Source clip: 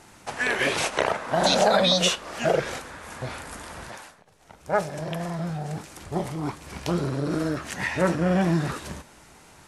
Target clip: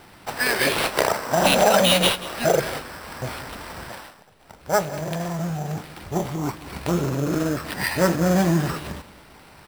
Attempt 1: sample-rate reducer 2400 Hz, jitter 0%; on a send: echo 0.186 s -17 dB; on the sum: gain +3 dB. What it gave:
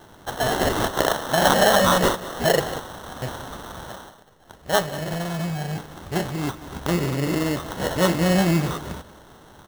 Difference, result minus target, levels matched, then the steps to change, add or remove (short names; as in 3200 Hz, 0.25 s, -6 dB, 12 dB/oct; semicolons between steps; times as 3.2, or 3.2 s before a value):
sample-rate reducer: distortion +6 dB
change: sample-rate reducer 6700 Hz, jitter 0%